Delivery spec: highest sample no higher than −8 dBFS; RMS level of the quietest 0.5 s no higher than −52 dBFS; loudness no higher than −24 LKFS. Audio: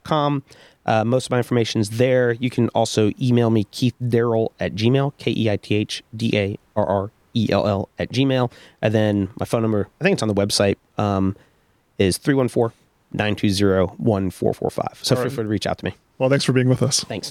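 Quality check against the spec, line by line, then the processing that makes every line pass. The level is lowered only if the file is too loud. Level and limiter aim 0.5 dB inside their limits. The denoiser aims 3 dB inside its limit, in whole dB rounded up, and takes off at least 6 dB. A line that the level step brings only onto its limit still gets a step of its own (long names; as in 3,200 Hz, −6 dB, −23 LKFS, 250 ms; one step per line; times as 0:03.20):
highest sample −4.0 dBFS: out of spec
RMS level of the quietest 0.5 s −61 dBFS: in spec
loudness −20.5 LKFS: out of spec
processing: level −4 dB
brickwall limiter −8.5 dBFS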